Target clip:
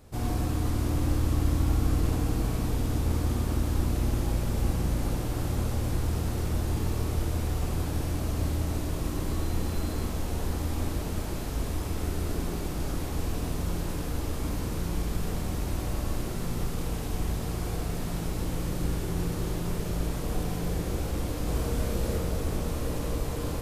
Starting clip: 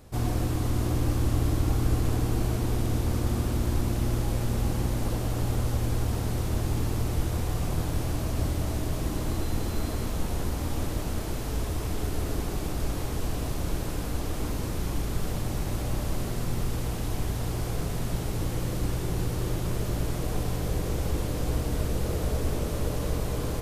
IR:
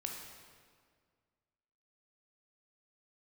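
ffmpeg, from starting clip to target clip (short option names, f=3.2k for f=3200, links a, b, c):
-filter_complex "[0:a]asettb=1/sr,asplit=3[a][b][c];[a]atrim=end=21.454[d];[b]atrim=start=21.45:end=22.18,asetpts=PTS-STARTPTS,afade=t=in:d=0.004:c=qsin,afade=t=out:st=0.726:d=0.004:c=qsin,asplit=2[e][f];[f]adelay=32,volume=-3.5dB[g];[e][g]amix=inputs=2:normalize=0,atrim=end_sample=32193[h];[c]atrim=start=22.176[i];[d][h]acrossfade=d=0.004:c1=hsin:c2=qsin[j];[j][i]acrossfade=d=0.004:c1=qsin:c2=hsin[k];[1:a]atrim=start_sample=2205,atrim=end_sample=6615[l];[k][l]afir=irnorm=-1:irlink=0"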